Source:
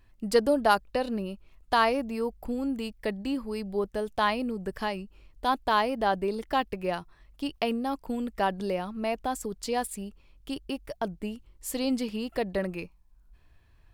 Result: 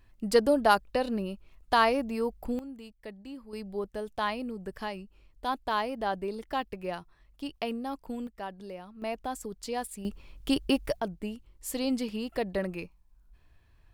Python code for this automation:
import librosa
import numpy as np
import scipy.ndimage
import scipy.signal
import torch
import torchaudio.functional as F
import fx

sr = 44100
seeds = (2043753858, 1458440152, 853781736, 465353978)

y = fx.gain(x, sr, db=fx.steps((0.0, 0.0), (2.59, -12.5), (3.53, -5.0), (8.27, -12.0), (9.02, -4.5), (10.05, 8.0), (11.0, -1.5)))